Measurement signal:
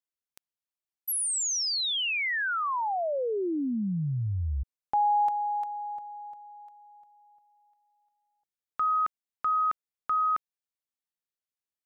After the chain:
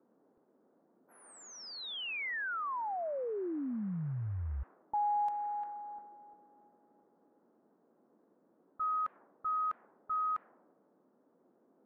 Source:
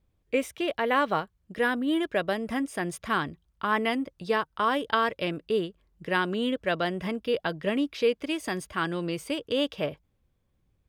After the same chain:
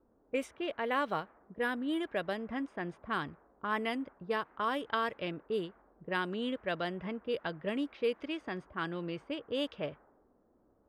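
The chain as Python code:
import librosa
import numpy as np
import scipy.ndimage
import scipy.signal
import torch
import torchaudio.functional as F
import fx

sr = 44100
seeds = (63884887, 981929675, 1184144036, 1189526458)

y = fx.dmg_noise_band(x, sr, seeds[0], low_hz=210.0, high_hz=1600.0, level_db=-55.0)
y = fx.env_lowpass(y, sr, base_hz=350.0, full_db=-21.5)
y = y * 10.0 ** (-7.5 / 20.0)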